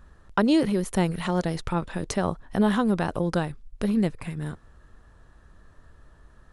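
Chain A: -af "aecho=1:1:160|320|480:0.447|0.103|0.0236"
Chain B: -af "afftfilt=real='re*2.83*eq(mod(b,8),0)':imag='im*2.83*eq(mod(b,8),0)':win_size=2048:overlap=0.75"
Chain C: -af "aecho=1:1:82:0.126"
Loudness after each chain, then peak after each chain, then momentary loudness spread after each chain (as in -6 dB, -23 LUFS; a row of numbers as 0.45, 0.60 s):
-25.5, -26.5, -26.0 LUFS; -8.0, -5.0, -8.0 dBFS; 11, 13, 12 LU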